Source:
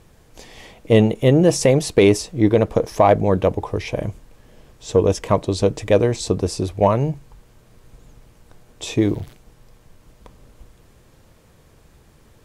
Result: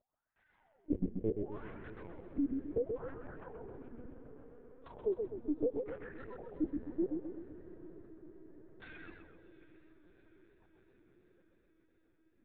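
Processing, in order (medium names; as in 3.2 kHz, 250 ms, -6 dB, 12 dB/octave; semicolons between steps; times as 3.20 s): tracing distortion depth 0.25 ms; gate -39 dBFS, range -16 dB; bass shelf 110 Hz +9.5 dB; compression 4:1, threshold -29 dBFS, peak gain reduction 18.5 dB; formant-preserving pitch shift -3 st; wah-wah 0.7 Hz 220–1700 Hz, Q 8.5; level held to a coarse grid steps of 21 dB; distance through air 170 m; echo that smears into a reverb 722 ms, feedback 63%, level -15 dB; LPC vocoder at 8 kHz pitch kept; modulated delay 129 ms, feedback 47%, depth 126 cents, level -5 dB; trim +12 dB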